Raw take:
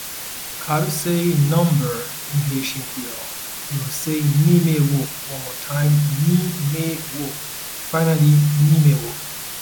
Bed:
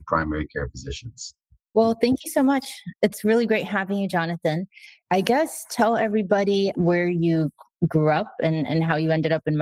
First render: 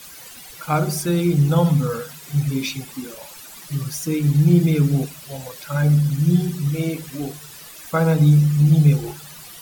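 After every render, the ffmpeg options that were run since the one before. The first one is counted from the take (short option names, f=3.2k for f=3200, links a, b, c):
-af "afftdn=nr=13:nf=-31"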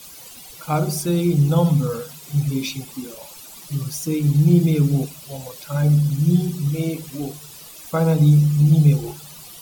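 -af "equalizer=f=1.7k:w=1.8:g=-8.5"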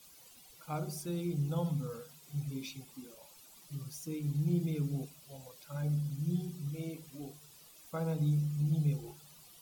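-af "volume=-17dB"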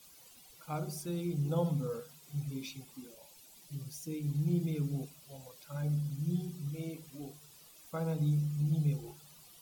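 -filter_complex "[0:a]asettb=1/sr,asplit=3[a][b][c];[a]atrim=end=1.454[d];[b]atrim=start=1.45:end=2,asetpts=PTS-STARTPTS,afade=t=in:d=0.004:c=qsin,afade=t=out:st=0.546:d=0.004:c=qsin,equalizer=f=450:w=0.82:g=6[e];[c]atrim=start=1.996[f];[d][e]acrossfade=d=0.004:c1=hsin:c2=qsin[g];[g][f]acrossfade=d=0.004:c1=qsin:c2=hsin,asettb=1/sr,asplit=3[h][i][j];[h]atrim=end=3.084[k];[i]atrim=start=3.08:end=4.29,asetpts=PTS-STARTPTS,afade=t=in:d=0.004:c=qsin,afade=t=out:st=1.206:d=0.004:c=qsin,equalizer=f=1.2k:w=3.1:g=-8.5[l];[j]atrim=start=4.286[m];[k][l]acrossfade=d=0.004:c1=hsin:c2=qsin[n];[n][m]acrossfade=d=0.004:c1=qsin:c2=hsin"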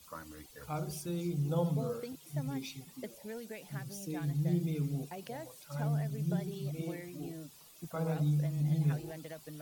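-filter_complex "[1:a]volume=-24.5dB[a];[0:a][a]amix=inputs=2:normalize=0"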